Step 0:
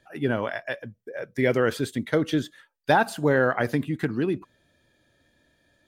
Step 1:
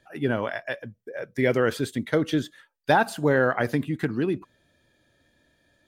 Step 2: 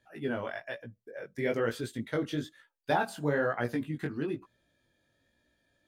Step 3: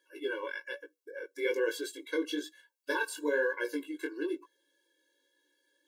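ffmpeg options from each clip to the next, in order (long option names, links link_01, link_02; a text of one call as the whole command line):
ffmpeg -i in.wav -af anull out.wav
ffmpeg -i in.wav -af "flanger=delay=16.5:depth=4.8:speed=1.1,volume=-5dB" out.wav
ffmpeg -i in.wav -af "highshelf=frequency=2200:gain=8.5,afftfilt=real='re*eq(mod(floor(b*sr/1024/290),2),1)':imag='im*eq(mod(floor(b*sr/1024/290),2),1)':win_size=1024:overlap=0.75" out.wav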